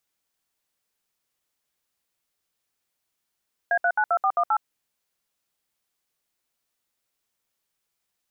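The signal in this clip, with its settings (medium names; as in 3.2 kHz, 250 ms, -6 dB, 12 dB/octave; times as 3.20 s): DTMF "A392418", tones 66 ms, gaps 66 ms, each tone -21 dBFS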